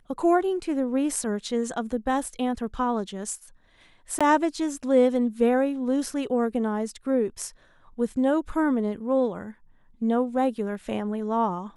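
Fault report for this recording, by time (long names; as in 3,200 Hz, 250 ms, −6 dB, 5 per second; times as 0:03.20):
0:04.19–0:04.21: drop-out 16 ms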